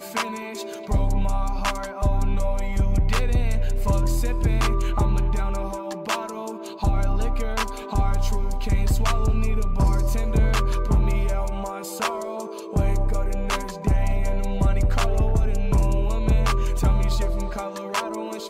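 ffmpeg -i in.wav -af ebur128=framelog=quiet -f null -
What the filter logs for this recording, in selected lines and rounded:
Integrated loudness:
  I:         -25.2 LUFS
  Threshold: -35.1 LUFS
Loudness range:
  LRA:         2.9 LU
  Threshold: -45.0 LUFS
  LRA low:   -26.6 LUFS
  LRA high:  -23.7 LUFS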